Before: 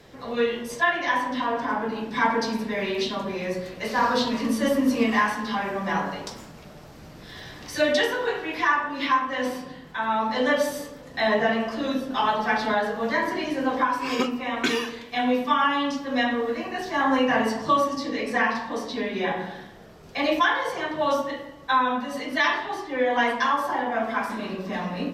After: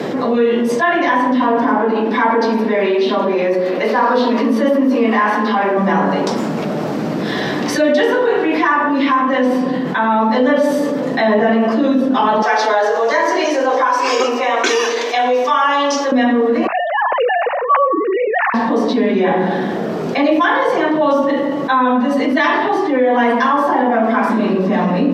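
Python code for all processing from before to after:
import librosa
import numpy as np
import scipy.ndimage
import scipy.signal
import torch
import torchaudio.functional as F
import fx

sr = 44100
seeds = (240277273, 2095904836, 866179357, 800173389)

y = fx.chain(x, sr, fx.highpass(hz=320.0, slope=12),
    fx.peak_eq(hz=8000.0, db=-7.5, octaves=1.1), at=(1.78, 5.77))
y = fx.chain(y, sr, fx.highpass(hz=430.0, slope=24),
    fx.peak_eq(hz=6100.0, db=14.0, octaves=0.65), at=(12.42, 16.12))
y = fx.chain(y, sr, fx.sine_speech(),
    fx.hum_notches(base_hz=50, count=5), at=(16.67, 18.54))
y = scipy.signal.sosfilt(scipy.signal.butter(4, 210.0, 'highpass', fs=sr, output='sos'), y)
y = fx.tilt_eq(y, sr, slope=-3.5)
y = fx.env_flatten(y, sr, amount_pct=70)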